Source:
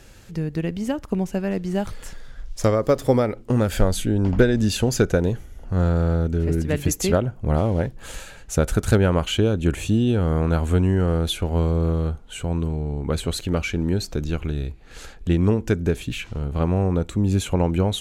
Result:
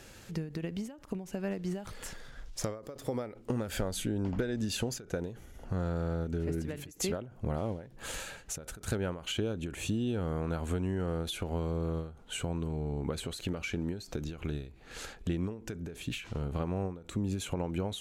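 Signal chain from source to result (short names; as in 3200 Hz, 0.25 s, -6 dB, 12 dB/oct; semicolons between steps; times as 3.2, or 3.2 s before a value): low shelf 83 Hz -10.5 dB; compressor 4:1, threshold -29 dBFS, peak gain reduction 14.5 dB; ending taper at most 110 dB/s; gain -1.5 dB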